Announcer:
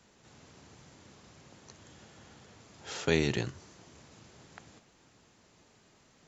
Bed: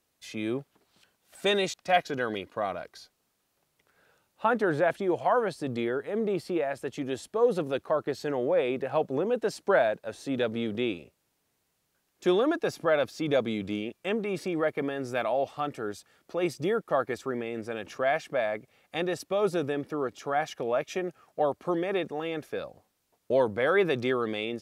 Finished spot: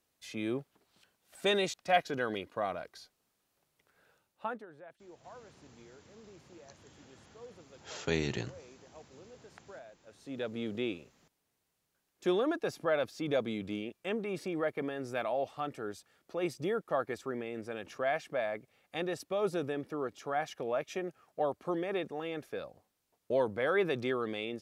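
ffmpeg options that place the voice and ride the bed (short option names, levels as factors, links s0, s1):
-filter_complex "[0:a]adelay=5000,volume=0.596[s0];[1:a]volume=7.94,afade=t=out:st=4.1:d=0.56:silence=0.0668344,afade=t=in:st=10:d=0.69:silence=0.0841395[s1];[s0][s1]amix=inputs=2:normalize=0"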